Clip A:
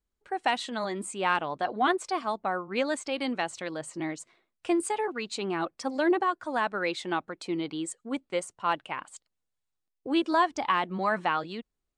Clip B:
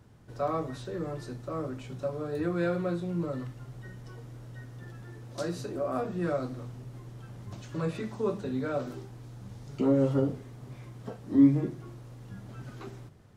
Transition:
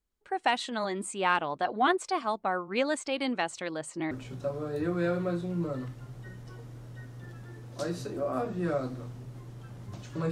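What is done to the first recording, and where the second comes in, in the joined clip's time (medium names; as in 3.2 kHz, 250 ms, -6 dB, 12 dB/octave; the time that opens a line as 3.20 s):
clip A
4.11 s: go over to clip B from 1.70 s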